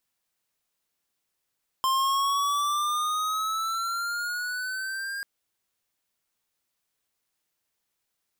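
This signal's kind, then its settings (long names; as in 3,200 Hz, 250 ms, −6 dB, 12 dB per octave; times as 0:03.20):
pitch glide with a swell square, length 3.39 s, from 1,050 Hz, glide +7.5 semitones, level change −9.5 dB, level −23.5 dB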